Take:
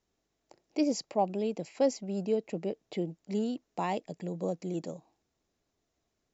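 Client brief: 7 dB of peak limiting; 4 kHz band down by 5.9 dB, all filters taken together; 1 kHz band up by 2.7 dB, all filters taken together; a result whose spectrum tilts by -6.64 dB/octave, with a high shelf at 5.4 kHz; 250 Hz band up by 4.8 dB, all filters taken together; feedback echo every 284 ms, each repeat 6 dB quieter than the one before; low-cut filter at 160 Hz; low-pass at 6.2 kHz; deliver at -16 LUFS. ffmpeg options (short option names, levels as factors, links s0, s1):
-af "highpass=160,lowpass=6200,equalizer=f=250:t=o:g=7,equalizer=f=1000:t=o:g=3.5,equalizer=f=4000:t=o:g=-4.5,highshelf=f=5400:g=-5,alimiter=limit=0.106:level=0:latency=1,aecho=1:1:284|568|852|1136|1420|1704:0.501|0.251|0.125|0.0626|0.0313|0.0157,volume=5.62"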